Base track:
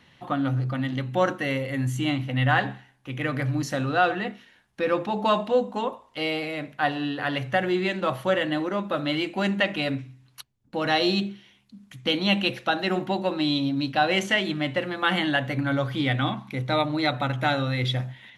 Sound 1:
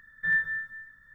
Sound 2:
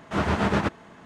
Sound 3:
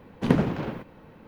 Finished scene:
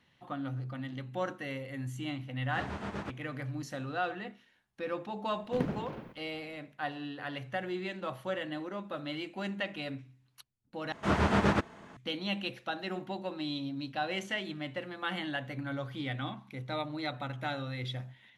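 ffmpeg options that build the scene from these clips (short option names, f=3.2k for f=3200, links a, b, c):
-filter_complex "[2:a]asplit=2[a][b];[0:a]volume=-12dB,asplit=2[c][d];[c]atrim=end=10.924[e];[b]atrim=end=1.05,asetpts=PTS-STARTPTS,volume=-3dB[f];[d]atrim=start=11.966[g];[a]atrim=end=1.05,asetpts=PTS-STARTPTS,volume=-15.5dB,afade=t=in:d=0.004:c=hsin,afade=t=out:st=1.046:d=0.004:c=hsin,adelay=2420[h];[3:a]atrim=end=1.27,asetpts=PTS-STARTPTS,volume=-12dB,afade=t=in:d=0.004:c=hsin,afade=t=out:st=1.266:d=0.004:c=hsin,adelay=5300[i];[e][f]acrossfade=d=0.004:c1=hsin:c2=hsin[j];[j][g]acrossfade=d=0.004:c1=hsin:c2=hsin[k];[k][h][i]amix=inputs=3:normalize=0"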